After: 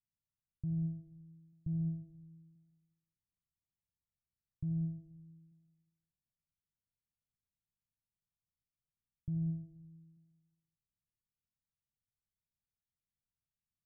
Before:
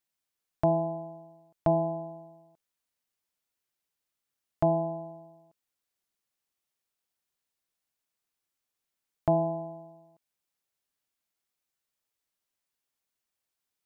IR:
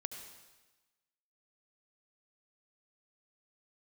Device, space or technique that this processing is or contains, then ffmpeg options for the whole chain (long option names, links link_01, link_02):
club heard from the street: -filter_complex "[0:a]alimiter=limit=-24dB:level=0:latency=1,lowpass=frequency=170:width=0.5412,lowpass=frequency=170:width=1.3066[link_01];[1:a]atrim=start_sample=2205[link_02];[link_01][link_02]afir=irnorm=-1:irlink=0,volume=8dB"